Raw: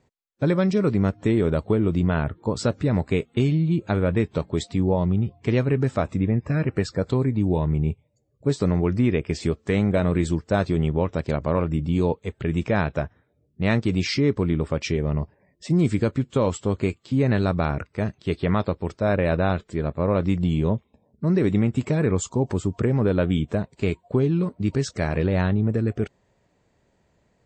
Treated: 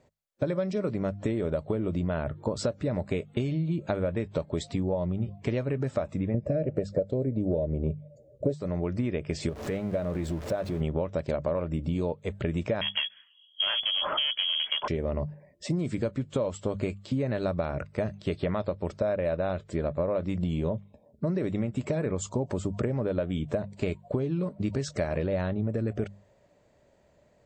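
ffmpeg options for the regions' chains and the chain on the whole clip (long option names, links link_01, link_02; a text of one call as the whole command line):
ffmpeg -i in.wav -filter_complex "[0:a]asettb=1/sr,asplit=3[link_01][link_02][link_03];[link_01]atrim=end=6.344[link_04];[link_02]atrim=start=6.34:end=8.54,asetpts=PTS-STARTPTS,afade=type=in:duration=0.004:curve=qsin,afade=type=out:start_time=2.196:duration=0.004:curve=qsin,lowshelf=frequency=770:width_type=q:width=3:gain=9,bandreject=frequency=4500:width=28[link_05];[link_03]atrim=start=8.536[link_06];[link_04][link_05]acrossfade=duration=0.004:curve1=hsin:curve2=qsin[link_07];[link_07][link_06]acrossfade=duration=0.004:curve1=qsin:curve2=hsin,asettb=1/sr,asplit=3[link_08][link_09][link_10];[link_08]atrim=end=9.494[link_11];[link_09]atrim=start=9.49:end=10.81,asetpts=PTS-STARTPTS,afade=type=in:duration=0.004:curve=qsin,afade=type=out:start_time=1.316:duration=0.004:curve=qsin,aeval=exprs='val(0)+0.5*0.0299*sgn(val(0))':channel_layout=same,highshelf=frequency=3600:gain=-8,acompressor=threshold=-33dB:ratio=2:attack=3.2:release=140:knee=1:detection=peak[link_12];[link_10]atrim=start=10.806[link_13];[link_11][link_12]acrossfade=duration=0.004:curve1=hsin:curve2=qsin[link_14];[link_14][link_13]acrossfade=duration=0.004:curve1=qsin:curve2=hsin,asettb=1/sr,asplit=3[link_15][link_16][link_17];[link_15]atrim=end=12.814[link_18];[link_16]atrim=start=12.81:end=14.88,asetpts=PTS-STARTPTS,afade=type=in:duration=0.004:curve=qsin,afade=type=out:start_time=2.066:duration=0.004:curve=qsin,acontrast=66,volume=17dB,asoftclip=hard,volume=-17dB,lowpass=frequency=2900:width_type=q:width=0.5098,lowpass=frequency=2900:width_type=q:width=0.6013,lowpass=frequency=2900:width_type=q:width=0.9,lowpass=frequency=2900:width_type=q:width=2.563,afreqshift=-3400[link_19];[link_17]atrim=start=14.876[link_20];[link_18][link_19]acrossfade=duration=0.004:curve1=hsin:curve2=qsin[link_21];[link_21][link_20]acrossfade=duration=0.004:curve1=qsin:curve2=hsin,equalizer=frequency=590:width_type=o:width=0.31:gain=11,bandreject=frequency=50:width_type=h:width=6,bandreject=frequency=100:width_type=h:width=6,bandreject=frequency=150:width_type=h:width=6,bandreject=frequency=200:width_type=h:width=6,acompressor=threshold=-25dB:ratio=10" out.wav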